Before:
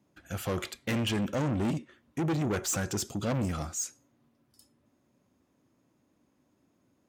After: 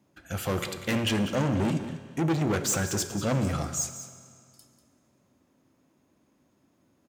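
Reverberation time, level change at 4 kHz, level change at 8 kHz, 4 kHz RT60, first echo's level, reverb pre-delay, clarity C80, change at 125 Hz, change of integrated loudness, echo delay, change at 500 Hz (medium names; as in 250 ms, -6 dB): 2.2 s, +4.0 dB, +4.0 dB, 2.1 s, -13.0 dB, 6 ms, 9.5 dB, +3.5 dB, +3.5 dB, 193 ms, +3.5 dB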